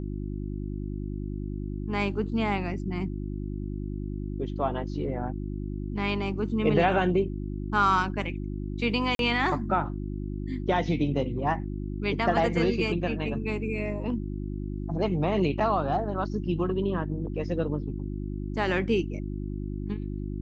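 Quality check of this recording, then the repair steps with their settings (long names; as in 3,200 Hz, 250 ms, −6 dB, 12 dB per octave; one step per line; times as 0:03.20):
mains hum 50 Hz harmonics 7 −33 dBFS
0:09.15–0:09.19: drop-out 42 ms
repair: hum removal 50 Hz, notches 7
repair the gap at 0:09.15, 42 ms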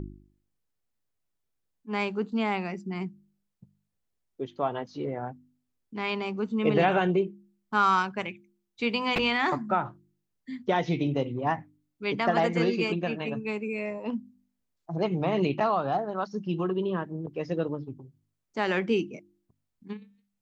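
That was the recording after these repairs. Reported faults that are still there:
none of them is left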